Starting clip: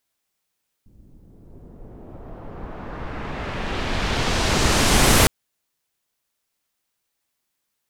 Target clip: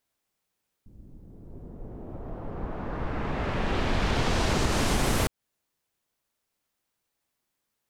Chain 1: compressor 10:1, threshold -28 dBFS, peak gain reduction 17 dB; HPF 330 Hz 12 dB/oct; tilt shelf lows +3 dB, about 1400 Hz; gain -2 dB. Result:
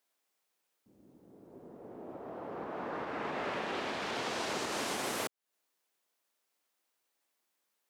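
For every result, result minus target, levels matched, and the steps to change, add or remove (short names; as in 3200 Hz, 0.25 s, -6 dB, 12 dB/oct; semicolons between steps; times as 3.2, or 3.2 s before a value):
compressor: peak gain reduction +7 dB; 250 Hz band -2.5 dB
change: compressor 10:1, threshold -20.5 dBFS, peak gain reduction 10 dB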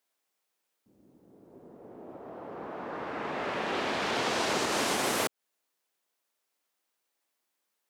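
250 Hz band -4.0 dB
remove: HPF 330 Hz 12 dB/oct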